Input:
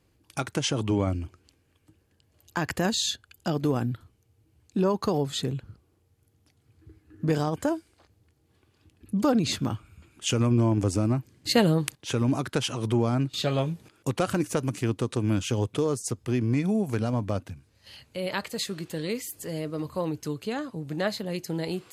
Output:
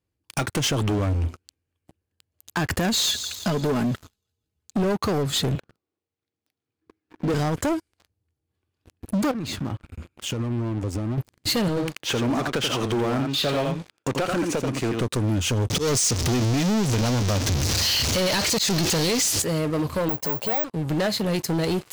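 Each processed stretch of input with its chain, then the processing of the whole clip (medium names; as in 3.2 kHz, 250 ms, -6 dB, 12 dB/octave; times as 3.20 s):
2.93–4.96 s: comb 4.7 ms, depth 53% + feedback echo behind a high-pass 164 ms, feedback 55%, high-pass 3.7 kHz, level -14 dB
5.55–7.34 s: high-pass 240 Hz + decimation joined by straight lines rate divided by 3×
9.31–11.18 s: treble shelf 2.8 kHz -8 dB + compression 2.5:1, threshold -43 dBFS
11.68–15.01 s: high-pass 340 Hz 6 dB/octave + distance through air 74 m + delay 84 ms -7.5 dB
15.70–19.42 s: jump at every zero crossing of -30 dBFS + FFT filter 1.5 kHz 0 dB, 6 kHz +14 dB, 13 kHz -6 dB + slow attack 143 ms
20.09–20.64 s: high-pass 97 Hz 24 dB/octave + high-order bell 720 Hz +16 dB 1.2 oct + careless resampling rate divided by 2×, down filtered, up zero stuff
whole clip: peaking EQ 83 Hz +6 dB 0.31 oct; compression 3:1, threshold -28 dBFS; waveshaping leveller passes 5; trim -6 dB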